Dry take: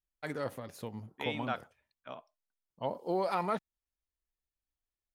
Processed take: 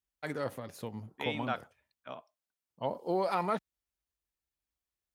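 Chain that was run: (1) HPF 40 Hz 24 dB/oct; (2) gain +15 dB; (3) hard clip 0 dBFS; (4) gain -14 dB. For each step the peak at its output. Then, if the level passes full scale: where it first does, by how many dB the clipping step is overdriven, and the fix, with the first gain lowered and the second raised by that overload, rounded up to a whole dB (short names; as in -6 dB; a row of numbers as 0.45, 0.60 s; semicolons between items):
-19.5, -4.5, -4.5, -18.5 dBFS; no overload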